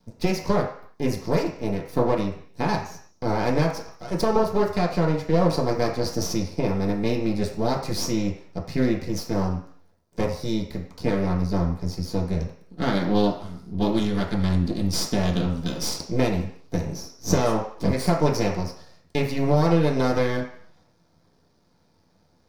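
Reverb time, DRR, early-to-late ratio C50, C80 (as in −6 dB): 0.55 s, −3.5 dB, 7.0 dB, 10.0 dB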